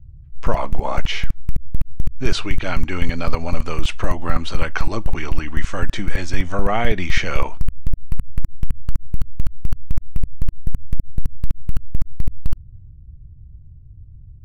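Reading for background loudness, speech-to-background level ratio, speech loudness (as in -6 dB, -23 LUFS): -30.0 LUFS, 3.5 dB, -26.5 LUFS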